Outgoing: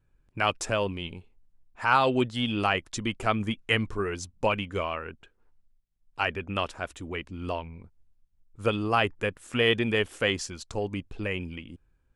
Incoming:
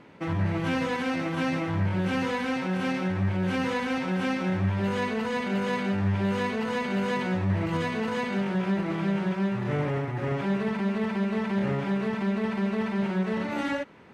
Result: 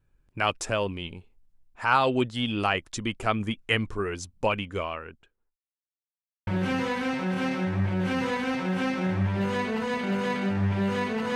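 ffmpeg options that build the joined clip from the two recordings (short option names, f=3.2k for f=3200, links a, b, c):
-filter_complex "[0:a]apad=whole_dur=11.35,atrim=end=11.35,asplit=2[a][b];[a]atrim=end=5.57,asetpts=PTS-STARTPTS,afade=t=out:st=4.53:d=1.04:c=qsin[c];[b]atrim=start=5.57:end=6.47,asetpts=PTS-STARTPTS,volume=0[d];[1:a]atrim=start=1.9:end=6.78,asetpts=PTS-STARTPTS,afade=t=in:d=0.004:c=hsin[e];[c][d][e]concat=n=3:v=0:a=1"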